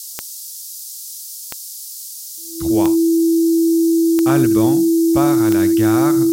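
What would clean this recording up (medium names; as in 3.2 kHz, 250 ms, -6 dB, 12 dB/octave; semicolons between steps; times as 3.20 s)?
de-click; band-stop 330 Hz, Q 30; noise print and reduce 30 dB; inverse comb 73 ms -13.5 dB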